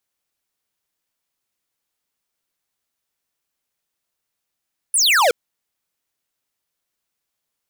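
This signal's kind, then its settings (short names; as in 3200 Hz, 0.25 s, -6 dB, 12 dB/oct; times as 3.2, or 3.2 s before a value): laser zap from 11000 Hz, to 440 Hz, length 0.37 s square, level -14.5 dB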